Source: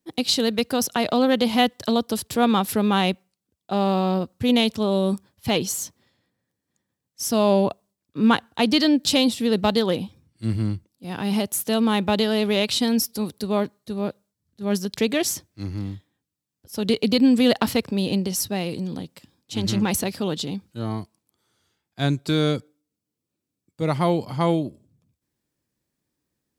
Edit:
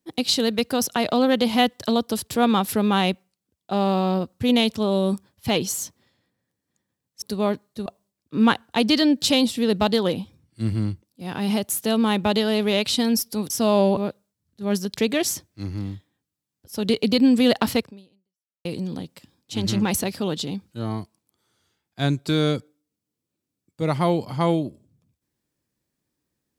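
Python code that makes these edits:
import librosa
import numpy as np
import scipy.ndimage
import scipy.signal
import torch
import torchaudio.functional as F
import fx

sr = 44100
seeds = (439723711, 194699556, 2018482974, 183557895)

y = fx.edit(x, sr, fx.swap(start_s=7.22, length_s=0.47, other_s=13.33, other_length_s=0.64),
    fx.fade_out_span(start_s=17.79, length_s=0.86, curve='exp'), tone=tone)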